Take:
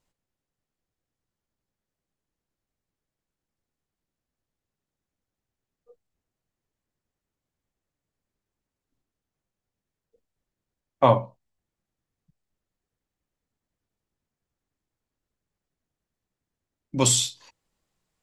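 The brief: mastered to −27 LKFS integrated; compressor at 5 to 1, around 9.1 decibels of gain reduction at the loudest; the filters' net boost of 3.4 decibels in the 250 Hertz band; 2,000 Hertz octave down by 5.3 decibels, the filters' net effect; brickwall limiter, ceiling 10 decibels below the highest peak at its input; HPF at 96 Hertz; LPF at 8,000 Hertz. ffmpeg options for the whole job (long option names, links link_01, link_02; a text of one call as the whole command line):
ffmpeg -i in.wav -af "highpass=96,lowpass=8000,equalizer=frequency=250:width_type=o:gain=4,equalizer=frequency=2000:width_type=o:gain=-7,acompressor=threshold=-22dB:ratio=5,volume=5dB,alimiter=limit=-14.5dB:level=0:latency=1" out.wav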